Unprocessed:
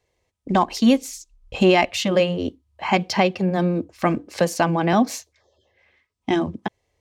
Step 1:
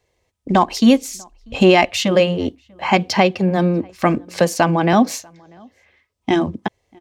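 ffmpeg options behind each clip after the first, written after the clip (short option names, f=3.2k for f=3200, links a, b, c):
-filter_complex "[0:a]asplit=2[a][b];[b]adelay=641.4,volume=-29dB,highshelf=f=4k:g=-14.4[c];[a][c]amix=inputs=2:normalize=0,volume=4dB"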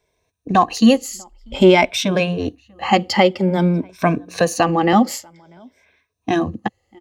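-af "afftfilt=real='re*pow(10,12/40*sin(2*PI*(1.6*log(max(b,1)*sr/1024/100)/log(2)-(0.52)*(pts-256)/sr)))':imag='im*pow(10,12/40*sin(2*PI*(1.6*log(max(b,1)*sr/1024/100)/log(2)-(0.52)*(pts-256)/sr)))':win_size=1024:overlap=0.75,volume=-2dB"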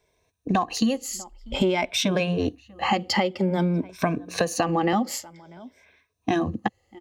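-af "acompressor=threshold=-19dB:ratio=12"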